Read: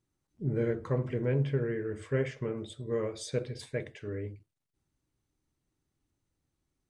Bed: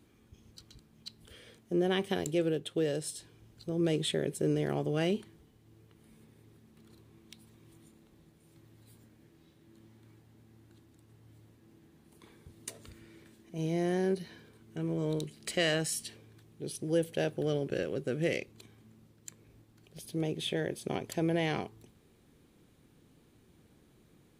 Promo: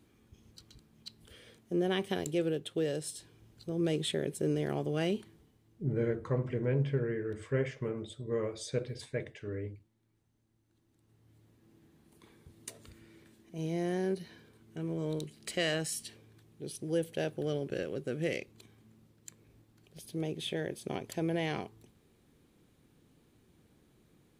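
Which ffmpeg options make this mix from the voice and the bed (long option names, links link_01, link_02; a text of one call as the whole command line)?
ffmpeg -i stem1.wav -i stem2.wav -filter_complex "[0:a]adelay=5400,volume=-1.5dB[link_01];[1:a]volume=13.5dB,afade=type=out:start_time=5.31:duration=0.73:silence=0.158489,afade=type=in:start_time=10.64:duration=1.19:silence=0.177828[link_02];[link_01][link_02]amix=inputs=2:normalize=0" out.wav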